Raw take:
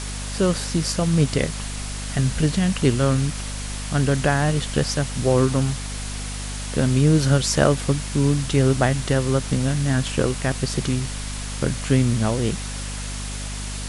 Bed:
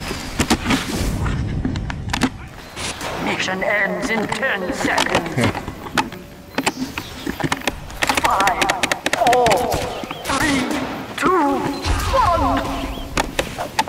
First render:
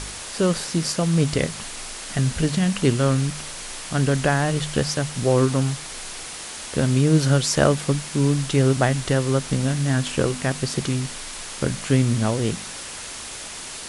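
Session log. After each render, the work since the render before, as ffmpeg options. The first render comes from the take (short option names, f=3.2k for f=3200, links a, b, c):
-af "bandreject=f=50:t=h:w=4,bandreject=f=100:t=h:w=4,bandreject=f=150:t=h:w=4,bandreject=f=200:t=h:w=4,bandreject=f=250:t=h:w=4"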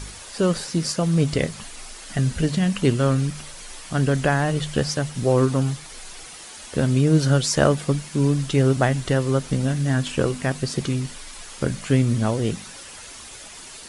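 -af "afftdn=nr=8:nf=-35"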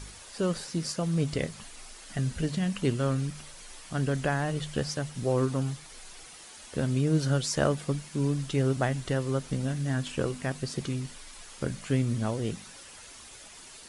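-af "volume=-8dB"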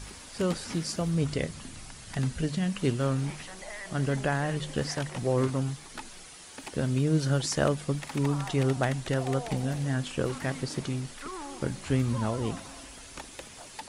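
-filter_complex "[1:a]volume=-24dB[a];[0:a][a]amix=inputs=2:normalize=0"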